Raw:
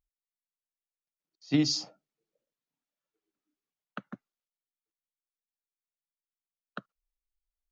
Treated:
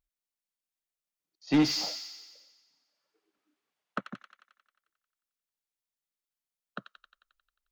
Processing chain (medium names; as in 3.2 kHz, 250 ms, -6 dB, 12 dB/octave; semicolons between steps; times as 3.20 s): 1.47–4.01 s: overdrive pedal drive 21 dB, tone 1.4 kHz, clips at -14 dBFS; feedback echo behind a high-pass 89 ms, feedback 64%, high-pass 2.3 kHz, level -3.5 dB